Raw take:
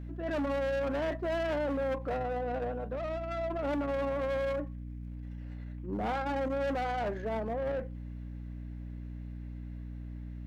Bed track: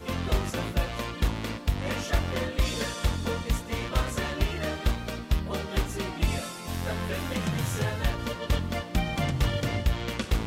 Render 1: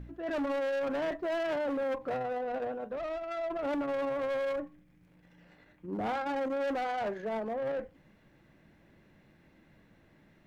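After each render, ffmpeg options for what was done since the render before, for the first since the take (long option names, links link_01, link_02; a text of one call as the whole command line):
ffmpeg -i in.wav -af "bandreject=frequency=60:width_type=h:width=4,bandreject=frequency=120:width_type=h:width=4,bandreject=frequency=180:width_type=h:width=4,bandreject=frequency=240:width_type=h:width=4,bandreject=frequency=300:width_type=h:width=4" out.wav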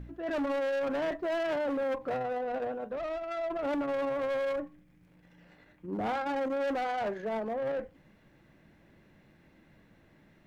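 ffmpeg -i in.wav -af "volume=1dB" out.wav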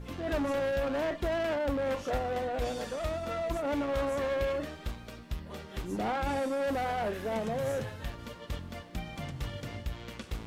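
ffmpeg -i in.wav -i bed.wav -filter_complex "[1:a]volume=-11.5dB[link_01];[0:a][link_01]amix=inputs=2:normalize=0" out.wav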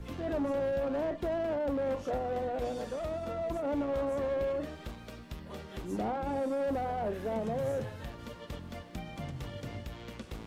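ffmpeg -i in.wav -filter_complex "[0:a]acrossover=split=140|940[link_01][link_02][link_03];[link_01]alimiter=level_in=12.5dB:limit=-24dB:level=0:latency=1:release=275,volume=-12.5dB[link_04];[link_03]acompressor=threshold=-49dB:ratio=6[link_05];[link_04][link_02][link_05]amix=inputs=3:normalize=0" out.wav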